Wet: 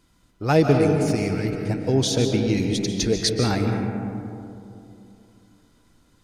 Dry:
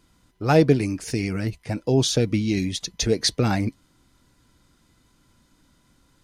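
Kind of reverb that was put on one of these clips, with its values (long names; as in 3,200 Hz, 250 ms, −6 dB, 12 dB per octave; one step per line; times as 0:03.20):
comb and all-pass reverb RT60 2.8 s, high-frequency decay 0.3×, pre-delay 105 ms, DRR 3 dB
level −1 dB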